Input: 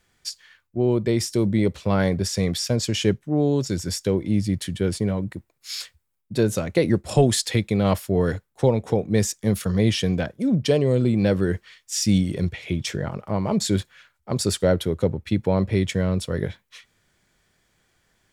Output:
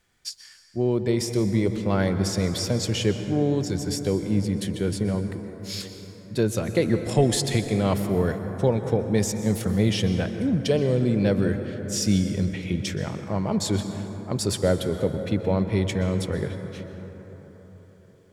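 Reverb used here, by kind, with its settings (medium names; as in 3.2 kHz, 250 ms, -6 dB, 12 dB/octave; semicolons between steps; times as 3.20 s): plate-style reverb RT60 4.5 s, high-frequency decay 0.3×, pre-delay 110 ms, DRR 7.5 dB; trim -2.5 dB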